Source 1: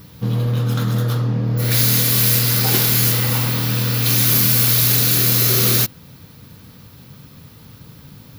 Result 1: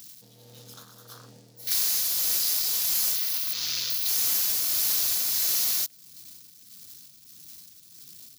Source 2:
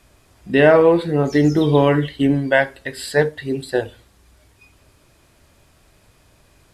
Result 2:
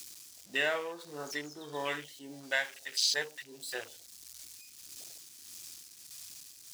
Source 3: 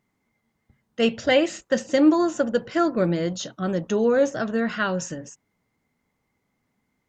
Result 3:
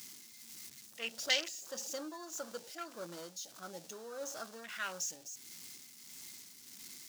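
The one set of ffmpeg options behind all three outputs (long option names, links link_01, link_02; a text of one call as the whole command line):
ffmpeg -i in.wav -af "aeval=exprs='val(0)+0.5*0.0501*sgn(val(0))':channel_layout=same,afwtdn=0.0447,aderivative,asoftclip=type=tanh:threshold=-14dB,tremolo=f=1.6:d=0.52,equalizer=frequency=5500:width_type=o:width=1.5:gain=10,acompressor=threshold=-23dB:ratio=6" out.wav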